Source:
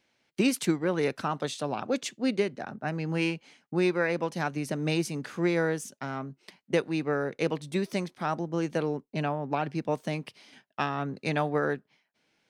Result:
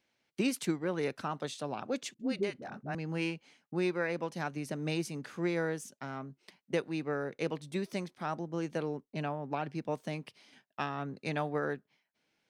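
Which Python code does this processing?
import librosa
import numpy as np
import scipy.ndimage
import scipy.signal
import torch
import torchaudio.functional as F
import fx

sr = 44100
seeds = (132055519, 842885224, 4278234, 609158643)

y = fx.dispersion(x, sr, late='highs', ms=55.0, hz=410.0, at=(2.14, 2.95))
y = y * librosa.db_to_amplitude(-6.0)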